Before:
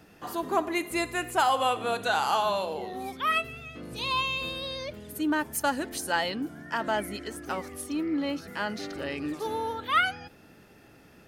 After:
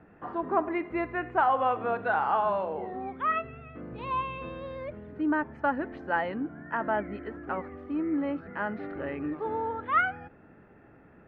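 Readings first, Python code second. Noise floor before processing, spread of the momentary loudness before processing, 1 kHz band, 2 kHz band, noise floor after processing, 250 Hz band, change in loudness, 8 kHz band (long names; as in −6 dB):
−55 dBFS, 11 LU, 0.0 dB, −2.5 dB, −56 dBFS, 0.0 dB, −1.0 dB, below −40 dB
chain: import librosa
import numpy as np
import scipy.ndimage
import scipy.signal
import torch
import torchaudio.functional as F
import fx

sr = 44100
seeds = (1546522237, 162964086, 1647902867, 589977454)

y = scipy.signal.sosfilt(scipy.signal.butter(4, 1900.0, 'lowpass', fs=sr, output='sos'), x)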